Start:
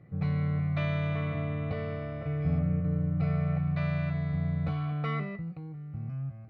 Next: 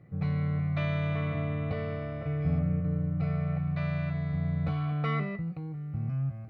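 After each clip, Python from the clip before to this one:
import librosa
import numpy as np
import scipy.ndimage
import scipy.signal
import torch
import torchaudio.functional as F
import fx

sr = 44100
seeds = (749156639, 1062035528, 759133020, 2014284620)

y = fx.rider(x, sr, range_db=5, speed_s=2.0)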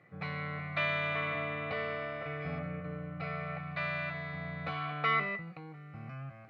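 y = fx.bandpass_q(x, sr, hz=2100.0, q=0.7)
y = y * 10.0 ** (7.5 / 20.0)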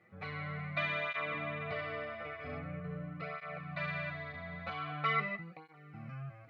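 y = fx.flanger_cancel(x, sr, hz=0.44, depth_ms=7.4)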